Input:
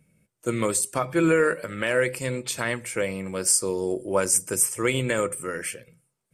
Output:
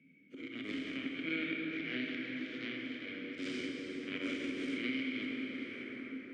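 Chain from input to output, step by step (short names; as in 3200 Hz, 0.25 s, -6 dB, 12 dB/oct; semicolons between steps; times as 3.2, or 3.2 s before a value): spectral dilation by 0.24 s; low shelf 170 Hz -10 dB; added harmonics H 7 -15 dB, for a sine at 0 dBFS; auto swell 0.116 s; vowel filter i; air absorption 210 m; plate-style reverb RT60 4.3 s, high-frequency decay 0.45×, DRR -1.5 dB; three-band squash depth 70%; gain +1 dB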